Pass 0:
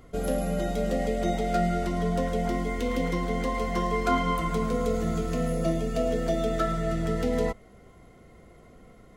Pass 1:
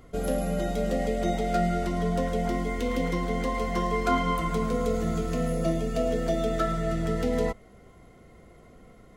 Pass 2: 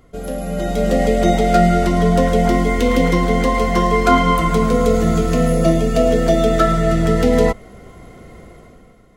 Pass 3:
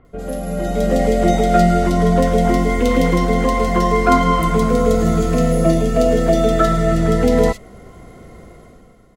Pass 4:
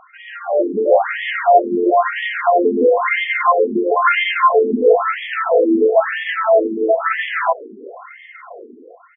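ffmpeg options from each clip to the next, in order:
ffmpeg -i in.wav -af anull out.wav
ffmpeg -i in.wav -af "dynaudnorm=framelen=130:gausssize=11:maxgain=13dB,volume=1dB" out.wav
ffmpeg -i in.wav -filter_complex "[0:a]acrossover=split=2700[link_01][link_02];[link_02]adelay=50[link_03];[link_01][link_03]amix=inputs=2:normalize=0" out.wav
ffmpeg -i in.wav -filter_complex "[0:a]asplit=2[link_01][link_02];[link_02]highpass=frequency=720:poles=1,volume=22dB,asoftclip=type=tanh:threshold=-1dB[link_03];[link_01][link_03]amix=inputs=2:normalize=0,lowpass=frequency=3400:poles=1,volume=-6dB,afftfilt=real='re*between(b*sr/1024,300*pow(2500/300,0.5+0.5*sin(2*PI*1*pts/sr))/1.41,300*pow(2500/300,0.5+0.5*sin(2*PI*1*pts/sr))*1.41)':imag='im*between(b*sr/1024,300*pow(2500/300,0.5+0.5*sin(2*PI*1*pts/sr))/1.41,300*pow(2500/300,0.5+0.5*sin(2*PI*1*pts/sr))*1.41)':win_size=1024:overlap=0.75,volume=1dB" out.wav

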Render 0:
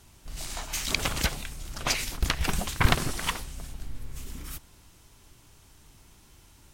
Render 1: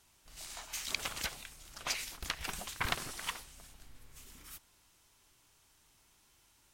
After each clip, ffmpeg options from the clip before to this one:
ffmpeg -i in.wav -af "lowshelf=frequency=410:gain=-12,volume=-8dB" out.wav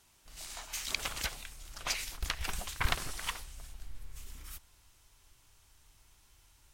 ffmpeg -i in.wav -af "asubboost=boost=4:cutoff=100,volume=1.5dB" out.wav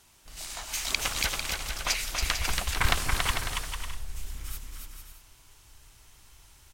ffmpeg -i in.wav -af "aecho=1:1:280|448|548.8|609.3|645.6:0.631|0.398|0.251|0.158|0.1,volume=6dB" out.wav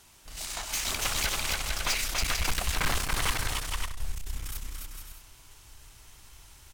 ffmpeg -i in.wav -af "aeval=exprs='(tanh(28.2*val(0)+0.55)-tanh(0.55))/28.2':channel_layout=same,volume=5.5dB" out.wav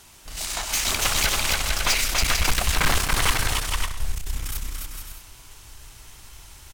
ffmpeg -i in.wav -af "aecho=1:1:120:0.178,volume=7dB" out.wav

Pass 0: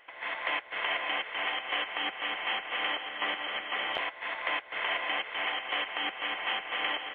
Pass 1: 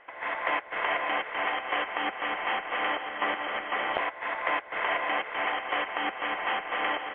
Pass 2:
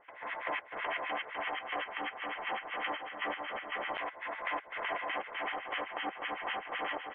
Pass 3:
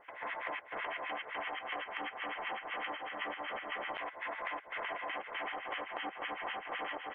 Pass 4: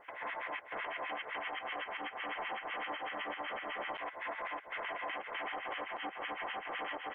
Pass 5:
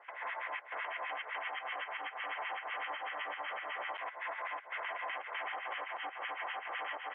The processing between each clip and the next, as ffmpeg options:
ffmpeg -i in.wav -af "lowpass=1700,volume=6.5dB" out.wav
ffmpeg -i in.wav -filter_complex "[0:a]acrossover=split=1300[link_01][link_02];[link_01]aeval=exprs='val(0)*(1-1/2+1/2*cos(2*PI*7.9*n/s))':channel_layout=same[link_03];[link_02]aeval=exprs='val(0)*(1-1/2-1/2*cos(2*PI*7.9*n/s))':channel_layout=same[link_04];[link_03][link_04]amix=inputs=2:normalize=0,volume=-2.5dB" out.wav
ffmpeg -i in.wav -af "acompressor=threshold=-39dB:ratio=6,volume=2.5dB" out.wav
ffmpeg -i in.wav -af "alimiter=level_in=8.5dB:limit=-24dB:level=0:latency=1:release=94,volume=-8.5dB,volume=2dB" out.wav
ffmpeg -i in.wav -af "highpass=670,lowpass=3300,volume=1.5dB" out.wav

